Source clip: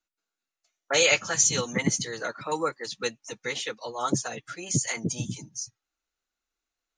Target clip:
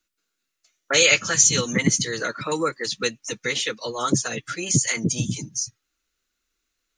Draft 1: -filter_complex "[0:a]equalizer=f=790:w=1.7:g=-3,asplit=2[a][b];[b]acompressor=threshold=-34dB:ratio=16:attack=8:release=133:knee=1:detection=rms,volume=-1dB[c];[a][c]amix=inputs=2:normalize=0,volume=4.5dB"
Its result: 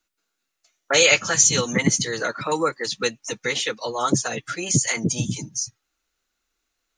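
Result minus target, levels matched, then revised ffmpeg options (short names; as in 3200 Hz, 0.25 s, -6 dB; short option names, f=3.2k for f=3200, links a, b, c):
1000 Hz band +2.5 dB
-filter_complex "[0:a]equalizer=f=790:w=1.7:g=-11,asplit=2[a][b];[b]acompressor=threshold=-34dB:ratio=16:attack=8:release=133:knee=1:detection=rms,volume=-1dB[c];[a][c]amix=inputs=2:normalize=0,volume=4.5dB"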